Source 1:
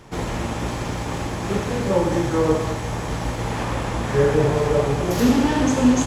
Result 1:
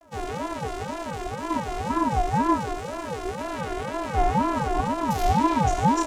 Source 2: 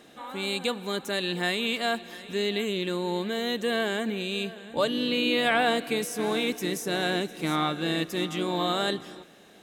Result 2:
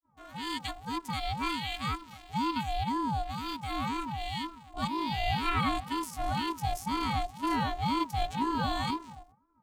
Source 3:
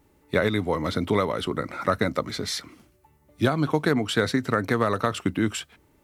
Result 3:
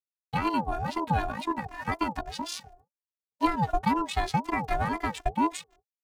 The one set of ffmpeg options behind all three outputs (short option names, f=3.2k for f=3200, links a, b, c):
-filter_complex "[0:a]afftfilt=real='hypot(re,im)*cos(PI*b)':imag='0':win_size=512:overlap=0.75,agate=range=-59dB:threshold=-54dB:ratio=16:detection=peak,acrossover=split=430|910[a][b][c];[c]aeval=exprs='sgn(val(0))*max(abs(val(0))-0.00237,0)':c=same[d];[a][b][d]amix=inputs=3:normalize=0,adynamicequalizer=threshold=0.0126:dfrequency=300:dqfactor=1.1:tfrequency=300:tqfactor=1.1:attack=5:release=100:ratio=0.375:range=2.5:mode=boostabove:tftype=bell,aeval=exprs='val(0)*sin(2*PI*520*n/s+520*0.3/2*sin(2*PI*2*n/s))':c=same"